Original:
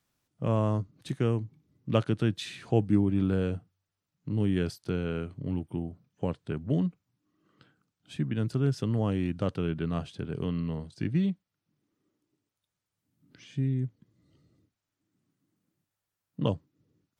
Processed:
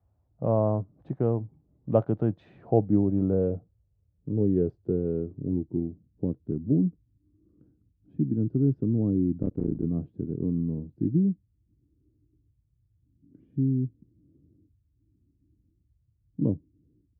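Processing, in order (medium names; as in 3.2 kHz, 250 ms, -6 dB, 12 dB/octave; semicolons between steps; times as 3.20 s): 9.42–9.85 s: cycle switcher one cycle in 3, muted; band noise 44–120 Hz -69 dBFS; low-pass sweep 720 Hz -> 310 Hz, 2.30–6.11 s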